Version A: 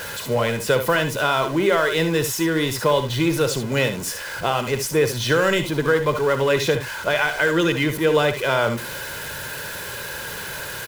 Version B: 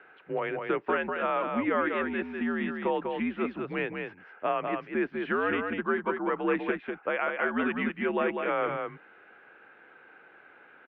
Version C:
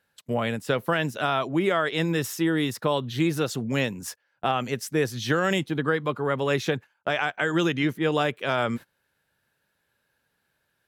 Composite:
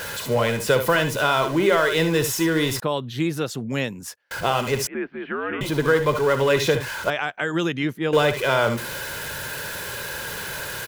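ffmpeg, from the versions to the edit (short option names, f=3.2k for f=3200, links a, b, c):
-filter_complex "[2:a]asplit=2[a][b];[0:a]asplit=4[c][d][e][f];[c]atrim=end=2.802[g];[a]atrim=start=2.798:end=4.312[h];[d]atrim=start=4.308:end=4.872[i];[1:a]atrim=start=4.868:end=5.612[j];[e]atrim=start=5.608:end=7.102[k];[b]atrim=start=7.098:end=8.132[l];[f]atrim=start=8.128[m];[g][h]acrossfade=d=0.004:c1=hsin:c2=hsin[n];[n][i]acrossfade=d=0.004:c1=hsin:c2=hsin[o];[o][j]acrossfade=d=0.004:c1=hsin:c2=hsin[p];[p][k]acrossfade=d=0.004:c1=hsin:c2=hsin[q];[q][l]acrossfade=d=0.004:c1=hsin:c2=hsin[r];[r][m]acrossfade=d=0.004:c1=hsin:c2=hsin"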